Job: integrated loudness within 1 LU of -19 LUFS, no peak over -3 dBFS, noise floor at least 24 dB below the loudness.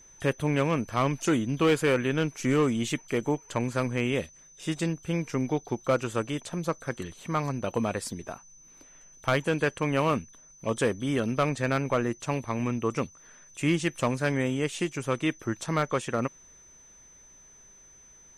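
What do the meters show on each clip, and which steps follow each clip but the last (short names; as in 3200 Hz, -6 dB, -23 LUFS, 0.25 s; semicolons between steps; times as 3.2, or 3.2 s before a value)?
clipped 0.4%; flat tops at -17.0 dBFS; steady tone 6100 Hz; tone level -52 dBFS; loudness -28.5 LUFS; peak -17.0 dBFS; loudness target -19.0 LUFS
-> clip repair -17 dBFS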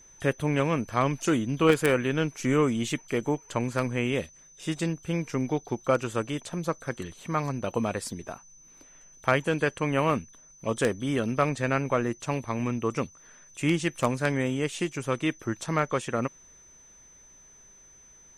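clipped 0.0%; steady tone 6100 Hz; tone level -52 dBFS
-> notch 6100 Hz, Q 30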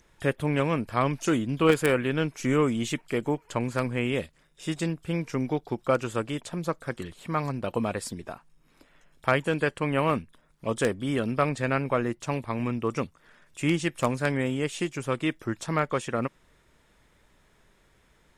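steady tone none; loudness -28.0 LUFS; peak -8.0 dBFS; loudness target -19.0 LUFS
-> gain +9 dB; limiter -3 dBFS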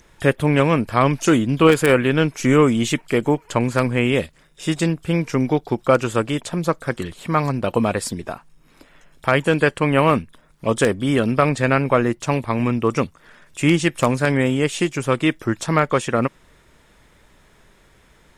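loudness -19.5 LUFS; peak -3.0 dBFS; noise floor -54 dBFS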